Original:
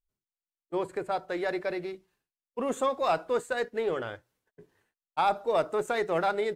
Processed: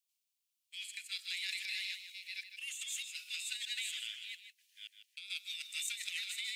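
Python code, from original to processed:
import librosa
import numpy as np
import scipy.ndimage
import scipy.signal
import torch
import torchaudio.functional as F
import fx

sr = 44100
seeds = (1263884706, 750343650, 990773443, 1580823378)

y = fx.reverse_delay(x, sr, ms=406, wet_db=-5.5)
y = scipy.signal.sosfilt(scipy.signal.butter(8, 2400.0, 'highpass', fs=sr, output='sos'), y)
y = fx.transient(y, sr, attack_db=2, sustain_db=7, at=(1.16, 3.29))
y = fx.over_compress(y, sr, threshold_db=-47.0, ratio=-0.5)
y = y + 10.0 ** (-9.5 / 20.0) * np.pad(y, (int(154 * sr / 1000.0), 0))[:len(y)]
y = y * 10.0 ** (7.0 / 20.0)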